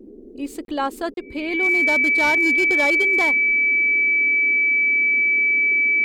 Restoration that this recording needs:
clipped peaks rebuilt −13 dBFS
notch filter 2,300 Hz, Q 30
repair the gap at 0:00.65/0:01.14, 32 ms
noise reduction from a noise print 28 dB

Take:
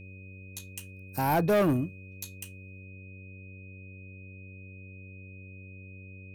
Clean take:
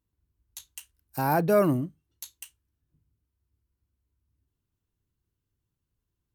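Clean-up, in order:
clipped peaks rebuilt −20 dBFS
hum removal 94.7 Hz, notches 6
notch filter 2,500 Hz, Q 30
level correction +5.5 dB, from 0:02.85

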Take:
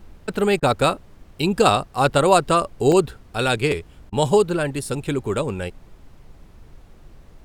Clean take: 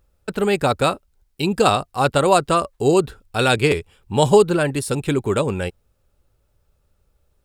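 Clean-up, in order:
repair the gap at 0:02.92, 1.3 ms
repair the gap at 0:00.60/0:04.10, 23 ms
noise reduction from a noise print 17 dB
level correction +3.5 dB, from 0:03.18

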